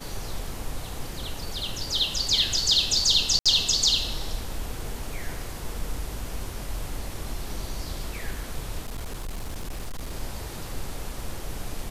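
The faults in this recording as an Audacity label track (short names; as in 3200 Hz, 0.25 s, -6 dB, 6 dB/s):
3.390000	3.460000	gap 66 ms
8.870000	10.120000	clipped -28.5 dBFS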